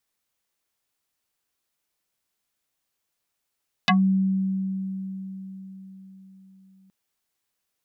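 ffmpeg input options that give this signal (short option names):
-f lavfi -i "aevalsrc='0.188*pow(10,-3*t/4.64)*sin(2*PI*191*t+5.4*pow(10,-3*t/0.13)*sin(2*PI*4.84*191*t))':d=3.02:s=44100"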